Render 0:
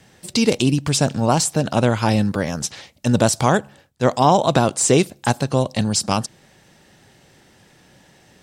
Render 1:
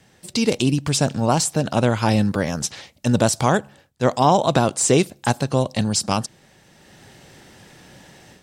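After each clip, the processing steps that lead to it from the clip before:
automatic gain control gain up to 9 dB
level −3.5 dB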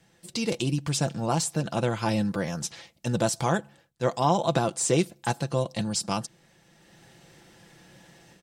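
comb filter 5.9 ms, depth 47%
level −8 dB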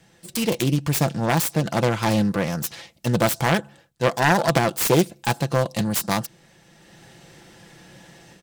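phase distortion by the signal itself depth 0.38 ms
level +6 dB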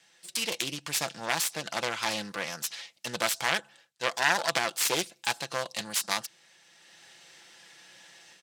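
resonant band-pass 4,200 Hz, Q 0.51

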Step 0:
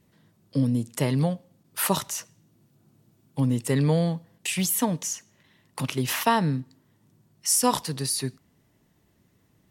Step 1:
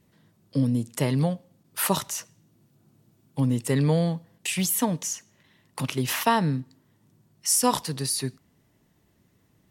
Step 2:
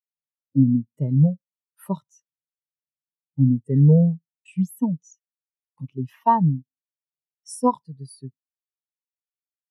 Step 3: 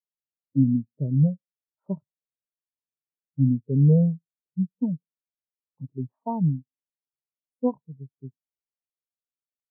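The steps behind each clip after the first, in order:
no processing that can be heard
every bin expanded away from the loudest bin 2.5 to 1; level +2 dB
inverse Chebyshev low-pass filter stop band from 2,200 Hz, stop band 60 dB; level −3 dB

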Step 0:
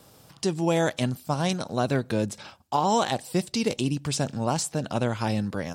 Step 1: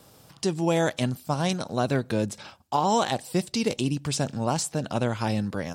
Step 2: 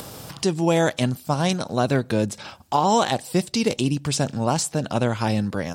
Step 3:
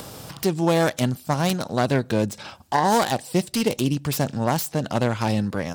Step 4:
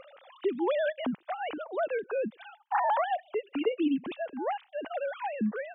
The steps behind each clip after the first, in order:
no processing that can be heard
upward compression, threshold −31 dBFS; level +4 dB
phase distortion by the signal itself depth 0.13 ms
three sine waves on the formant tracks; level −8.5 dB

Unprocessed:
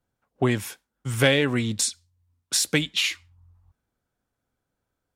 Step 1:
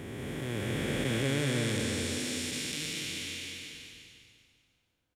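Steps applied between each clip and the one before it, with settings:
spectrum smeared in time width 1,270 ms
on a send: repeating echo 197 ms, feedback 40%, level −6 dB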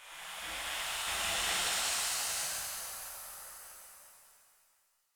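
gate on every frequency bin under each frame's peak −20 dB weak
reverb with rising layers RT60 2 s, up +7 semitones, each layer −8 dB, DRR −8 dB
level −2 dB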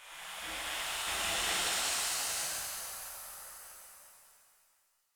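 dynamic equaliser 340 Hz, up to +5 dB, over −59 dBFS, Q 1.5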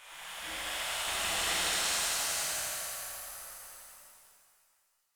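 feedback echo at a low word length 84 ms, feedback 80%, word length 10 bits, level −6.5 dB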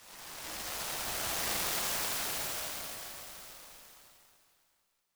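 short delay modulated by noise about 3,300 Hz, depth 0.13 ms
level −2 dB

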